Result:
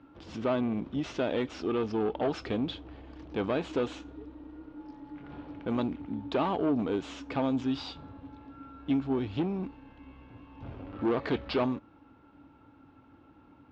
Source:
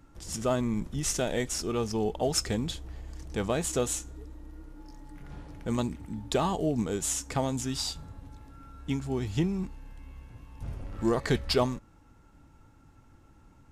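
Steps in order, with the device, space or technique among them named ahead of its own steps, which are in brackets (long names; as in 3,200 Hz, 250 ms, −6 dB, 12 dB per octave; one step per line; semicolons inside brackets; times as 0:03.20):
guitar amplifier (tube saturation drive 27 dB, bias 0.25; bass and treble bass −6 dB, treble −3 dB; loudspeaker in its box 80–3,600 Hz, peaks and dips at 160 Hz −3 dB, 280 Hz +8 dB, 1,900 Hz −6 dB)
level +4 dB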